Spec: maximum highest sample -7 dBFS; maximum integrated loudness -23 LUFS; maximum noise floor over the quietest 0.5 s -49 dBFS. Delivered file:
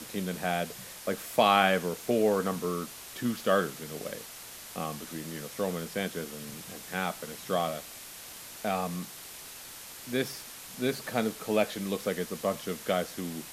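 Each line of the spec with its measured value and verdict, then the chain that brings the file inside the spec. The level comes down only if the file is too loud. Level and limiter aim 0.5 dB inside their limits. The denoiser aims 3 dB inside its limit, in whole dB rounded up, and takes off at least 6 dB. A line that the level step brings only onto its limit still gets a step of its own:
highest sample -8.0 dBFS: OK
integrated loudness -31.5 LUFS: OK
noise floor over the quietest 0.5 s -46 dBFS: fail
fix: denoiser 6 dB, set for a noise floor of -46 dBFS

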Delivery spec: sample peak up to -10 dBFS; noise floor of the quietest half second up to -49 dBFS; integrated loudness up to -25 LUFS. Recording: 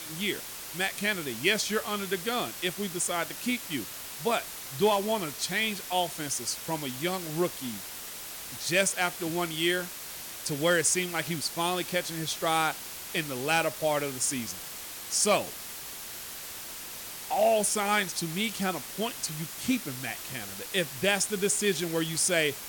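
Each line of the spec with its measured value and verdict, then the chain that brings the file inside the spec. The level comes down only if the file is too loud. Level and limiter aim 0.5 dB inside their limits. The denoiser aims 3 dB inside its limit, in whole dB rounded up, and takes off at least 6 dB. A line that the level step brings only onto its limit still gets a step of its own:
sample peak -12.0 dBFS: OK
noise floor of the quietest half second -41 dBFS: fail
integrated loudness -29.0 LUFS: OK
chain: denoiser 11 dB, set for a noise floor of -41 dBFS

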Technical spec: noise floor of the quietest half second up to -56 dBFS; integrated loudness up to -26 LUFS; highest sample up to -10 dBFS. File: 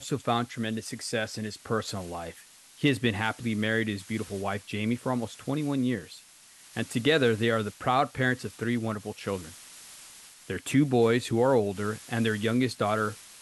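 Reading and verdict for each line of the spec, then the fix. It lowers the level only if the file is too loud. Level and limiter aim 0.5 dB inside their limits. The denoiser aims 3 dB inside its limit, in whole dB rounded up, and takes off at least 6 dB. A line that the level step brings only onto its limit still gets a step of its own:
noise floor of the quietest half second -54 dBFS: fail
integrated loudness -28.5 LUFS: OK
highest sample -11.5 dBFS: OK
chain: denoiser 6 dB, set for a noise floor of -54 dBFS

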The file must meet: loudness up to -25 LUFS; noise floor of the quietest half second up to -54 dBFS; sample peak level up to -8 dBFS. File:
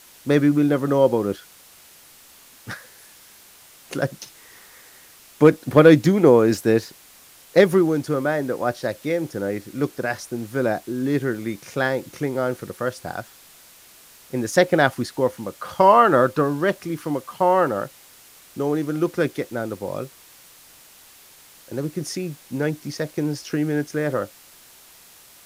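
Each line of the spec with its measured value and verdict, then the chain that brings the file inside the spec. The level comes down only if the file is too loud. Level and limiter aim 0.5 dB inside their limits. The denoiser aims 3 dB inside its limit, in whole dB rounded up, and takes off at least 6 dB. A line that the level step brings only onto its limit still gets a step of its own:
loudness -21.0 LUFS: fail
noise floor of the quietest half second -49 dBFS: fail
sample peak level -2.5 dBFS: fail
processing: denoiser 6 dB, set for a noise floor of -49 dBFS; gain -4.5 dB; limiter -8.5 dBFS

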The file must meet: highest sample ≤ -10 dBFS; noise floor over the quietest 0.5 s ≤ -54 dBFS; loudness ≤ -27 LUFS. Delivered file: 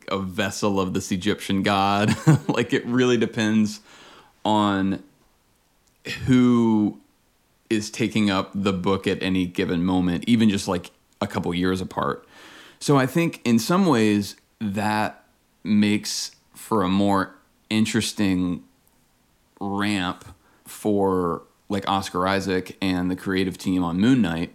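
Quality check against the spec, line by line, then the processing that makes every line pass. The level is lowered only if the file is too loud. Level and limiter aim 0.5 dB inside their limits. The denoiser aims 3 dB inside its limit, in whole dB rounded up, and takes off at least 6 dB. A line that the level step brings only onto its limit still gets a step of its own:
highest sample -4.0 dBFS: fail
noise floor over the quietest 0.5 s -63 dBFS: OK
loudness -22.5 LUFS: fail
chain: gain -5 dB; limiter -10.5 dBFS

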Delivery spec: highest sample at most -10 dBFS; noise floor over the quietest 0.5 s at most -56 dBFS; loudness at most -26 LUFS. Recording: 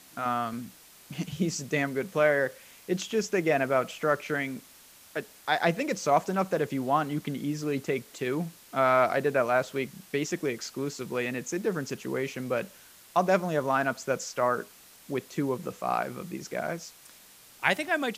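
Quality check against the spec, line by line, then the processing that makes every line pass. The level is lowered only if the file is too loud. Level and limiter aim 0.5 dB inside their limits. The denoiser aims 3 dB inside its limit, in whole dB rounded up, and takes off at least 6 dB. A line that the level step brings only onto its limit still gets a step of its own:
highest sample -8.0 dBFS: fail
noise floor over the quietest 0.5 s -54 dBFS: fail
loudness -29.0 LUFS: OK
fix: denoiser 6 dB, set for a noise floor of -54 dBFS; limiter -10.5 dBFS

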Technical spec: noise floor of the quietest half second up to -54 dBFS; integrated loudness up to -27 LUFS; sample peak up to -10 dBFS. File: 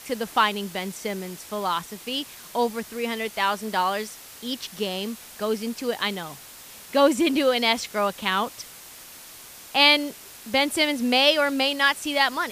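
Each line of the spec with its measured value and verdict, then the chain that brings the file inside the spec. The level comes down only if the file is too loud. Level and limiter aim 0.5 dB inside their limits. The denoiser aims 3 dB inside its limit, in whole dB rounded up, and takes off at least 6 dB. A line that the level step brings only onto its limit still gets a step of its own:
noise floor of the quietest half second -44 dBFS: fail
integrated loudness -23.5 LUFS: fail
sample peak -5.0 dBFS: fail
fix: denoiser 9 dB, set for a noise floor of -44 dBFS; gain -4 dB; limiter -10.5 dBFS

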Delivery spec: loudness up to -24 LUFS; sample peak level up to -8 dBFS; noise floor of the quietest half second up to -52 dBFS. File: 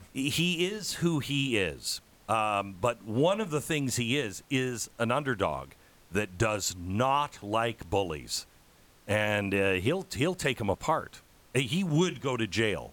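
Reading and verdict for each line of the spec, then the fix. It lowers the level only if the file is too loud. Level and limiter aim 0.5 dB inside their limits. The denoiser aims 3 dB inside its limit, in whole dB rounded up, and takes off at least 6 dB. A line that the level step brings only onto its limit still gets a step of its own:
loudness -29.5 LUFS: OK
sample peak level -14.0 dBFS: OK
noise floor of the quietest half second -59 dBFS: OK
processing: none

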